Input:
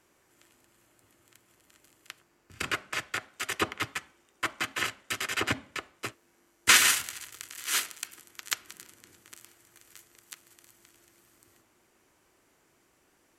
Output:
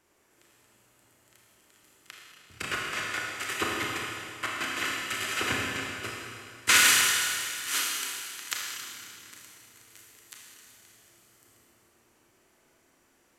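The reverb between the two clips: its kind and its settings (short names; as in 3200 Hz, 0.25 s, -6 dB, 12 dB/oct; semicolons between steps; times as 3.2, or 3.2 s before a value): Schroeder reverb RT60 2.4 s, combs from 26 ms, DRR -3 dB; gain -3 dB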